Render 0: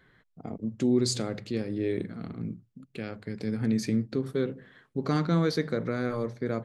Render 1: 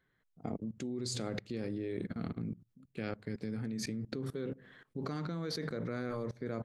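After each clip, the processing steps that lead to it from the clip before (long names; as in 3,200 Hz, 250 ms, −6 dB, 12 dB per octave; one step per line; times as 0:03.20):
output level in coarse steps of 20 dB
level +2.5 dB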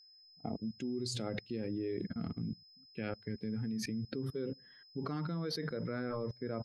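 spectral dynamics exaggerated over time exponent 1.5
parametric band 7,600 Hz −5.5 dB 0.57 octaves
steady tone 5,100 Hz −61 dBFS
level +2.5 dB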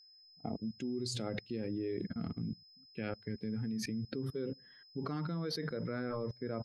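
no processing that can be heard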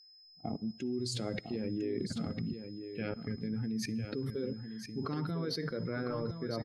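spectral magnitudes quantised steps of 15 dB
single-tap delay 1,003 ms −8.5 dB
on a send at −23 dB: convolution reverb RT60 0.80 s, pre-delay 50 ms
on the sum: level +2 dB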